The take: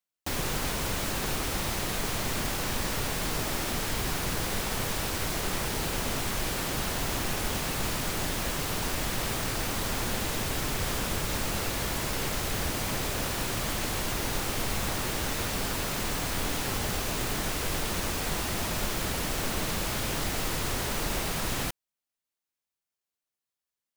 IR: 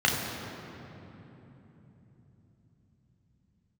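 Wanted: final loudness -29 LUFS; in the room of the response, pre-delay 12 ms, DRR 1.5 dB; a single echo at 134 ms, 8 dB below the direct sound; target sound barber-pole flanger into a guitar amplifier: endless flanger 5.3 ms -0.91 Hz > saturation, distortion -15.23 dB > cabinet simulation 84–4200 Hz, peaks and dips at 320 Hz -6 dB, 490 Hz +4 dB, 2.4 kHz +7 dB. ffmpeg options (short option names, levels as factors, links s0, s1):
-filter_complex "[0:a]aecho=1:1:134:0.398,asplit=2[s0][s1];[1:a]atrim=start_sample=2205,adelay=12[s2];[s1][s2]afir=irnorm=-1:irlink=0,volume=0.15[s3];[s0][s3]amix=inputs=2:normalize=0,asplit=2[s4][s5];[s5]adelay=5.3,afreqshift=-0.91[s6];[s4][s6]amix=inputs=2:normalize=1,asoftclip=threshold=0.0501,highpass=84,equalizer=f=320:t=q:w=4:g=-6,equalizer=f=490:t=q:w=4:g=4,equalizer=f=2400:t=q:w=4:g=7,lowpass=f=4200:w=0.5412,lowpass=f=4200:w=1.3066,volume=1.58"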